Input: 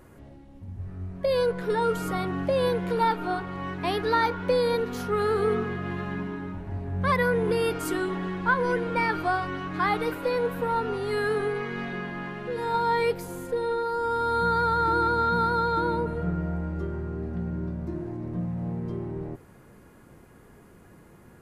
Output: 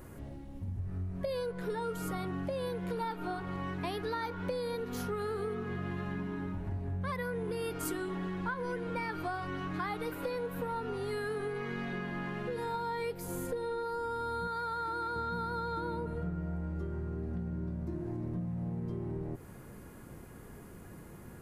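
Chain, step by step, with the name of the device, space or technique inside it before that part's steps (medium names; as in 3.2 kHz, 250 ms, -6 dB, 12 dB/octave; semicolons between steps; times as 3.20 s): 14.47–15.16 s: bass shelf 330 Hz -10.5 dB; ASMR close-microphone chain (bass shelf 240 Hz +4.5 dB; compression 6:1, threshold -34 dBFS, peak gain reduction 15.5 dB; treble shelf 8.1 kHz +8 dB)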